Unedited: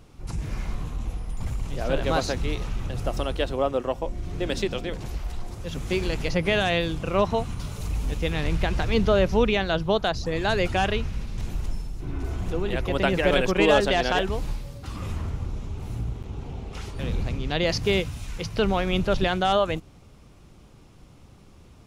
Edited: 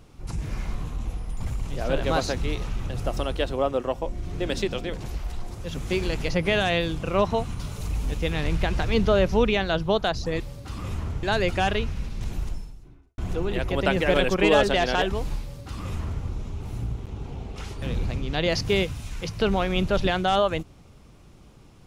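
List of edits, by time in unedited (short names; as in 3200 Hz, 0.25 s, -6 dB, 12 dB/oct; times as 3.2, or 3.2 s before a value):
11.6–12.35 fade out quadratic
14.58–15.41 copy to 10.4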